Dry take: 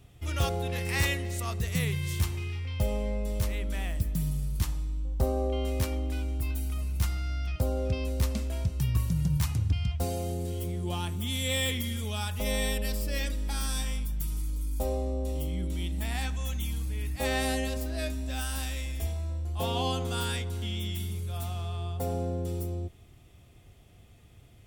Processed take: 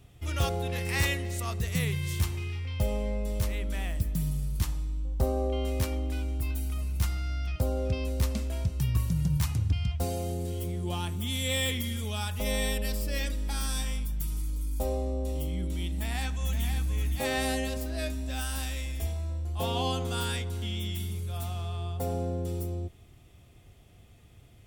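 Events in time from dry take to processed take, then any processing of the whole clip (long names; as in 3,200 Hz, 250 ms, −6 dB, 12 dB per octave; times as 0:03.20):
0:15.90–0:16.85: delay throw 520 ms, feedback 20%, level −6.5 dB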